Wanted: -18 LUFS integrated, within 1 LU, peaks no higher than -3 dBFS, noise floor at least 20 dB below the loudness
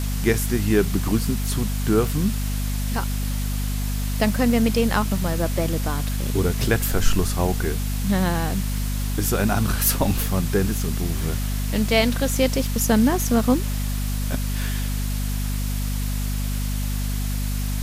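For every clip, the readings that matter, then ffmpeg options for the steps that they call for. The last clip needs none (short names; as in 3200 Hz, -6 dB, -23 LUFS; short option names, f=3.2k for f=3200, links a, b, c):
hum 50 Hz; harmonics up to 250 Hz; hum level -22 dBFS; noise floor -25 dBFS; noise floor target -43 dBFS; loudness -23.0 LUFS; peak -4.5 dBFS; loudness target -18.0 LUFS
-> -af "bandreject=f=50:t=h:w=6,bandreject=f=100:t=h:w=6,bandreject=f=150:t=h:w=6,bandreject=f=200:t=h:w=6,bandreject=f=250:t=h:w=6"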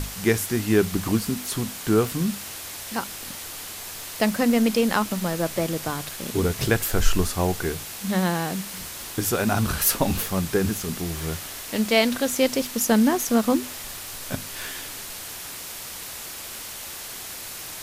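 hum none; noise floor -37 dBFS; noise floor target -45 dBFS
-> -af "afftdn=nr=8:nf=-37"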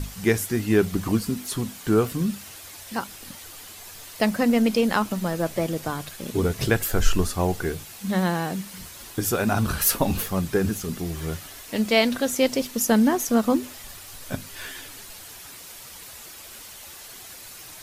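noise floor -42 dBFS; noise floor target -45 dBFS
-> -af "afftdn=nr=6:nf=-42"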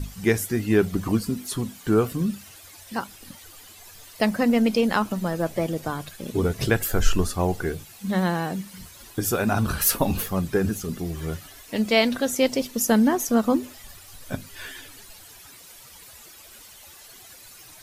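noise floor -47 dBFS; loudness -24.5 LUFS; peak -5.5 dBFS; loudness target -18.0 LUFS
-> -af "volume=6.5dB,alimiter=limit=-3dB:level=0:latency=1"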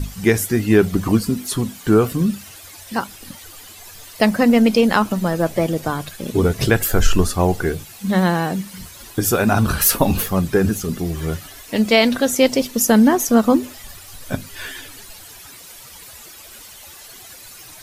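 loudness -18.0 LUFS; peak -3.0 dBFS; noise floor -40 dBFS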